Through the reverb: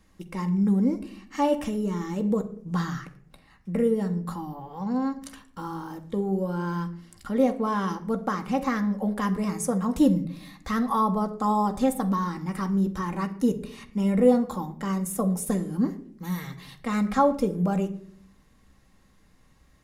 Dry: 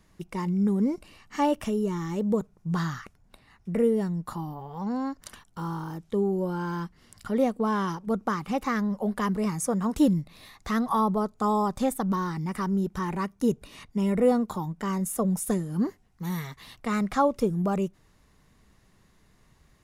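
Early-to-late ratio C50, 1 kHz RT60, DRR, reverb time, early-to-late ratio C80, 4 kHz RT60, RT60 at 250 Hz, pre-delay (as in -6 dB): 14.0 dB, 0.45 s, 5.0 dB, 0.55 s, 17.5 dB, 0.40 s, 1.0 s, 4 ms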